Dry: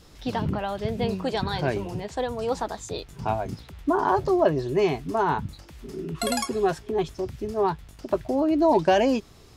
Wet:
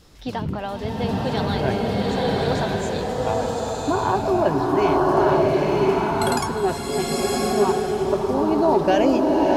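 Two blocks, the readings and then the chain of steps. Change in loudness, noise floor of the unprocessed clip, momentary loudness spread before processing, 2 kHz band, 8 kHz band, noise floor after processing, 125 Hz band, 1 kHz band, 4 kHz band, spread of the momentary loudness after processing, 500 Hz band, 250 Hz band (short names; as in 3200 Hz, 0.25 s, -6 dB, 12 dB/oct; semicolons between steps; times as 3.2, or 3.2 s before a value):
+4.5 dB, -50 dBFS, 11 LU, +4.5 dB, +5.5 dB, -29 dBFS, +5.5 dB, +4.5 dB, +5.0 dB, 8 LU, +5.0 dB, +5.0 dB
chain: bloom reverb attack 1.05 s, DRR -4 dB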